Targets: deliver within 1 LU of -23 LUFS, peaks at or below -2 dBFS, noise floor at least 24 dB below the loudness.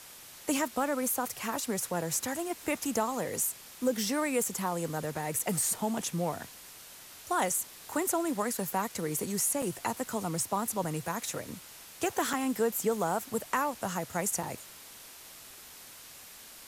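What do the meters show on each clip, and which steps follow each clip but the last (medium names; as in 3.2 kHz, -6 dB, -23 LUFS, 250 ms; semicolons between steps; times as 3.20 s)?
dropouts 4; longest dropout 4.4 ms; noise floor -50 dBFS; noise floor target -56 dBFS; loudness -31.5 LUFS; peak level -17.5 dBFS; loudness target -23.0 LUFS
-> interpolate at 5.39/9.62/12.33/14.43 s, 4.4 ms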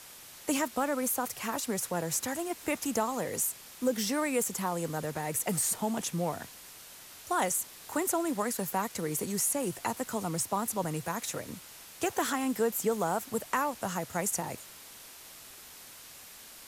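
dropouts 0; noise floor -50 dBFS; noise floor target -56 dBFS
-> noise print and reduce 6 dB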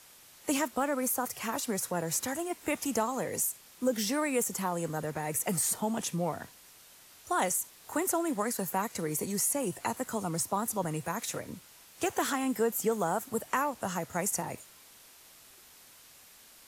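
noise floor -56 dBFS; loudness -31.5 LUFS; peak level -17.5 dBFS; loudness target -23.0 LUFS
-> trim +8.5 dB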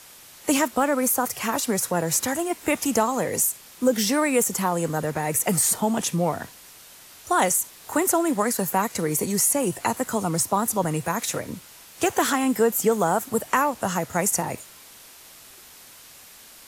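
loudness -23.0 LUFS; peak level -9.0 dBFS; noise floor -47 dBFS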